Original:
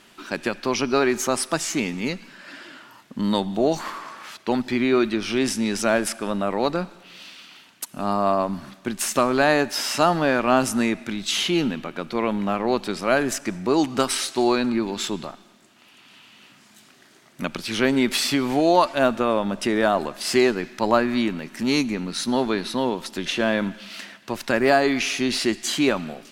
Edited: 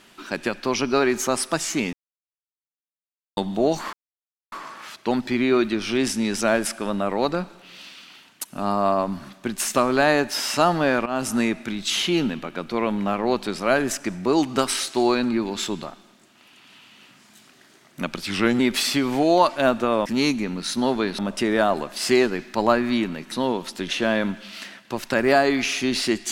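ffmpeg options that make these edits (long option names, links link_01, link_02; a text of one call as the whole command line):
ffmpeg -i in.wav -filter_complex "[0:a]asplit=10[link_01][link_02][link_03][link_04][link_05][link_06][link_07][link_08][link_09][link_10];[link_01]atrim=end=1.93,asetpts=PTS-STARTPTS,afade=type=out:start_time=1.926:duration=0.004:curve=hsin[link_11];[link_02]atrim=start=1.93:end=3.37,asetpts=PTS-STARTPTS,volume=0[link_12];[link_03]atrim=start=3.37:end=3.93,asetpts=PTS-STARTPTS,afade=type=in:duration=0.004:curve=hsin,afade=type=out:start_time=0.556:duration=0.004:curve=hsin,apad=pad_dur=0.59[link_13];[link_04]atrim=start=3.93:end=10.47,asetpts=PTS-STARTPTS,afade=type=in:duration=0.004:curve=hsin,afade=type=out:start_time=6.536:duration=0.004:curve=hsin:silence=0.158489[link_14];[link_05]atrim=start=10.47:end=17.684,asetpts=PTS-STARTPTS,afade=type=in:duration=0.28:silence=0.158489[link_15];[link_06]atrim=start=17.68:end=17.97,asetpts=PTS-STARTPTS,asetrate=39249,aresample=44100[link_16];[link_07]atrim=start=17.966:end=19.432[link_17];[link_08]atrim=start=21.558:end=22.692[link_18];[link_09]atrim=start=19.428:end=21.562[link_19];[link_10]atrim=start=22.688[link_20];[link_11][link_12][link_13][link_14][link_15]concat=n=5:v=0:a=1[link_21];[link_21][link_16]acrossfade=duration=0.004:curve1=hsin:curve2=hsin[link_22];[link_22][link_17]acrossfade=duration=0.004:curve1=hsin:curve2=hsin[link_23];[link_23][link_18]acrossfade=duration=0.004:curve1=hsin:curve2=hsin[link_24];[link_24][link_19]acrossfade=duration=0.004:curve1=hsin:curve2=hsin[link_25];[link_25][link_20]acrossfade=duration=0.004:curve1=hsin:curve2=hsin" out.wav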